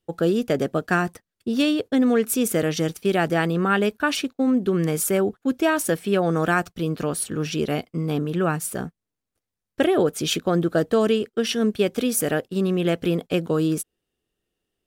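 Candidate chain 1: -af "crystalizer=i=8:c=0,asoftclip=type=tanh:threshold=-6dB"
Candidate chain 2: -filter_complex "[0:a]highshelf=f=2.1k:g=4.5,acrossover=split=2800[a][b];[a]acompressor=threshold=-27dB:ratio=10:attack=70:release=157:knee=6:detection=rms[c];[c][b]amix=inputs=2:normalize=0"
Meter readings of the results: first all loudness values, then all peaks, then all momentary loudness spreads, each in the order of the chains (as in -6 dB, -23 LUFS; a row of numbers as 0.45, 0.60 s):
-16.5, -26.5 LUFS; -6.0, -6.0 dBFS; 11, 8 LU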